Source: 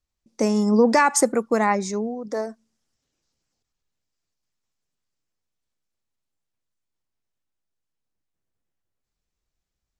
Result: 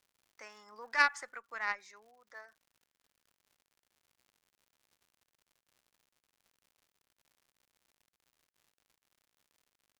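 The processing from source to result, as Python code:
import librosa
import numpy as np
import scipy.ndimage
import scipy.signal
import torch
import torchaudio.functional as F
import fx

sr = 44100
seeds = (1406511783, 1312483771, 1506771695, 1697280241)

y = fx.ladder_bandpass(x, sr, hz=1900.0, resonance_pct=45)
y = fx.cheby_harmonics(y, sr, harmonics=(3, 4, 6), levels_db=(-14, -32, -34), full_scale_db=-17.5)
y = fx.dmg_crackle(y, sr, seeds[0], per_s=130.0, level_db=-62.0)
y = y * 10.0 ** (6.0 / 20.0)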